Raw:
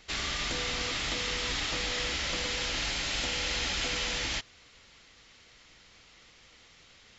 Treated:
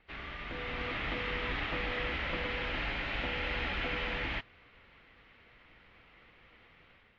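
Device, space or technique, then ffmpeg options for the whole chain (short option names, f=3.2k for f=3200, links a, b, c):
action camera in a waterproof case: -af "lowpass=f=2.6k:w=0.5412,lowpass=f=2.6k:w=1.3066,dynaudnorm=f=460:g=3:m=8dB,volume=-7.5dB" -ar 32000 -c:a aac -b:a 48k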